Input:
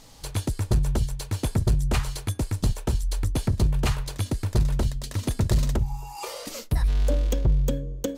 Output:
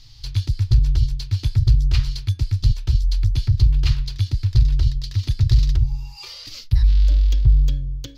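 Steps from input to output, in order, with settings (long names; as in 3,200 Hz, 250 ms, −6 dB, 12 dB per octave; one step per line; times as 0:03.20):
drawn EQ curve 130 Hz 0 dB, 180 Hz −28 dB, 320 Hz −16 dB, 510 Hz −28 dB, 4,800 Hz 0 dB, 8,500 Hz −24 dB, 13,000 Hz −18 dB
level +7.5 dB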